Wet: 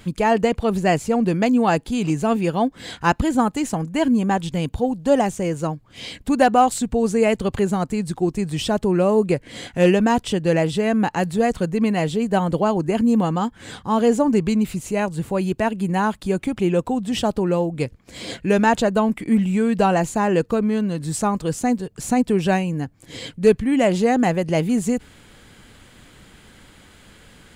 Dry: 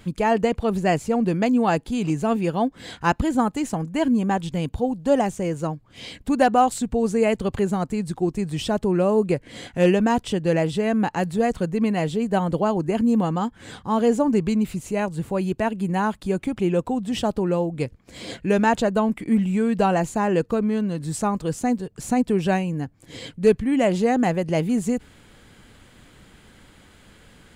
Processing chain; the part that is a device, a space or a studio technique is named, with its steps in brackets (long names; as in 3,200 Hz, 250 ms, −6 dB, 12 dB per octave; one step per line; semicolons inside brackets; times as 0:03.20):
exciter from parts (in parallel at −9 dB: high-pass filter 2,000 Hz 6 dB per octave + soft clipping −25 dBFS, distortion −13 dB)
on the sum: level +2 dB